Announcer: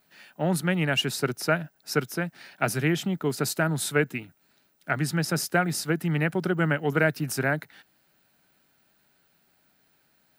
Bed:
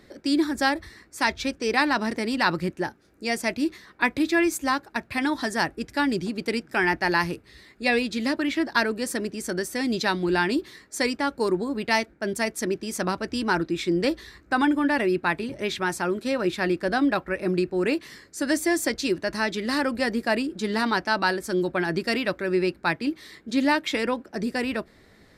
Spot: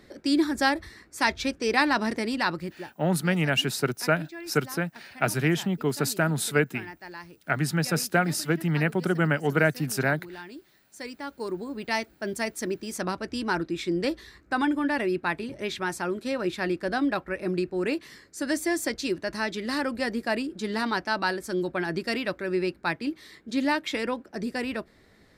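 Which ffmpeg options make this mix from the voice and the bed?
ffmpeg -i stem1.wav -i stem2.wav -filter_complex "[0:a]adelay=2600,volume=0.5dB[link_01];[1:a]volume=15dB,afade=type=out:start_time=2.14:duration=0.85:silence=0.11885,afade=type=in:start_time=10.8:duration=1.44:silence=0.16788[link_02];[link_01][link_02]amix=inputs=2:normalize=0" out.wav

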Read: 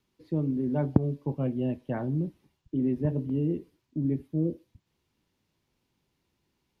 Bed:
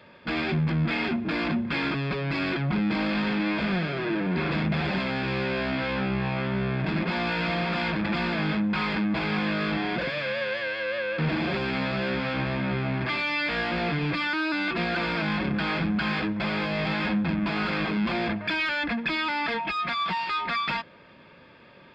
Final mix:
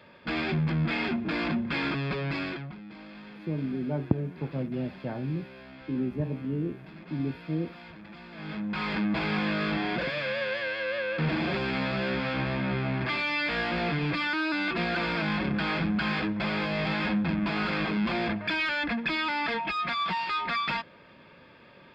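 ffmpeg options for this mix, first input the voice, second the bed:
ffmpeg -i stem1.wav -i stem2.wav -filter_complex "[0:a]adelay=3150,volume=-3dB[link_01];[1:a]volume=16dB,afade=type=out:start_time=2.26:duration=0.5:silence=0.133352,afade=type=in:start_time=8.31:duration=0.74:silence=0.125893[link_02];[link_01][link_02]amix=inputs=2:normalize=0" out.wav

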